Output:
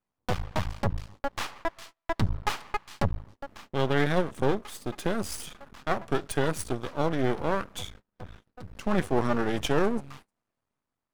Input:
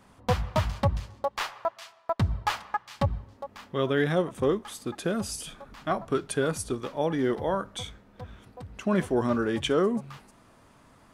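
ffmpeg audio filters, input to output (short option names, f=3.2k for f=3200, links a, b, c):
-af "dynaudnorm=f=760:g=3:m=3dB,agate=range=-27dB:threshold=-44dB:ratio=16:detection=peak,aeval=exprs='max(val(0),0)':c=same"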